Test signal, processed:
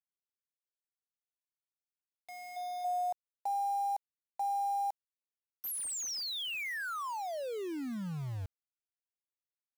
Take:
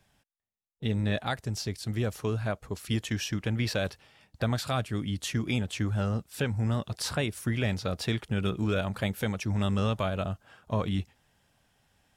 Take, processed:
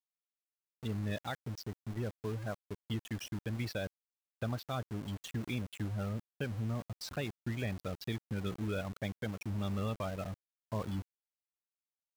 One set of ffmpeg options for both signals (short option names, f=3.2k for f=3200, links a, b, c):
-af "afftfilt=real='re*gte(hypot(re,im),0.0316)':imag='im*gte(hypot(re,im),0.0316)':win_size=1024:overlap=0.75,aeval=exprs='val(0)*gte(abs(val(0)),0.0168)':c=same,volume=-8dB"